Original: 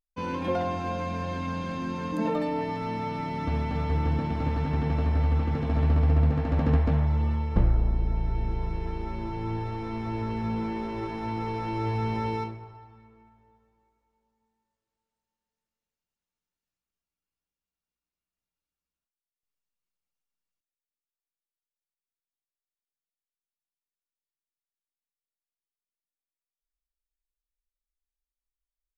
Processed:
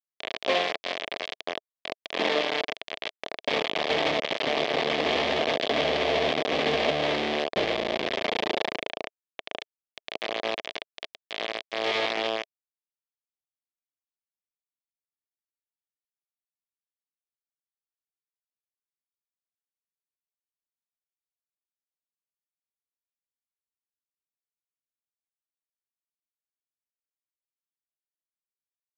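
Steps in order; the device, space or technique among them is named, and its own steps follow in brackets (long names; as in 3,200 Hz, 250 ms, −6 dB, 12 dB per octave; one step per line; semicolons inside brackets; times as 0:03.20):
hand-held game console (bit reduction 4 bits; loudspeaker in its box 410–4,500 Hz, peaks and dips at 430 Hz +3 dB, 650 Hz +7 dB, 920 Hz −7 dB, 1,400 Hz −10 dB, 2,200 Hz +3 dB, 3,300 Hz +6 dB)
level +2.5 dB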